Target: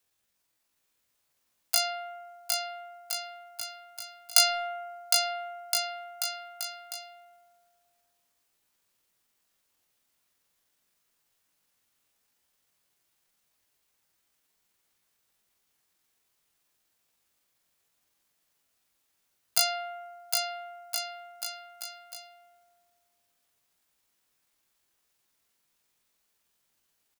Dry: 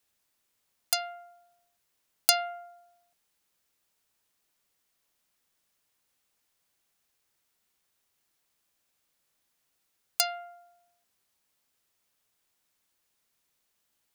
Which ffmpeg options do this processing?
-filter_complex "[0:a]atempo=0.52,aecho=1:1:760|1368|1854|2244|2555:0.631|0.398|0.251|0.158|0.1,acrossover=split=190|1000[s0][s1][s2];[s1]volume=50.1,asoftclip=hard,volume=0.02[s3];[s0][s3][s2]amix=inputs=3:normalize=0"

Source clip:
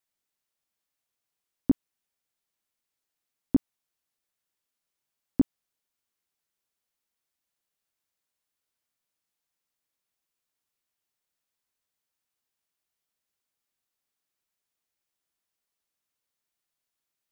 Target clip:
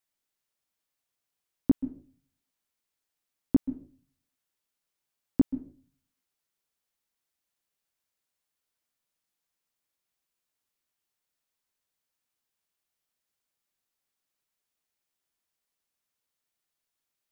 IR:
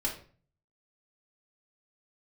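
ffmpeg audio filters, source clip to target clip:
-filter_complex "[0:a]asplit=2[s0][s1];[1:a]atrim=start_sample=2205,adelay=129[s2];[s1][s2]afir=irnorm=-1:irlink=0,volume=0.1[s3];[s0][s3]amix=inputs=2:normalize=0"

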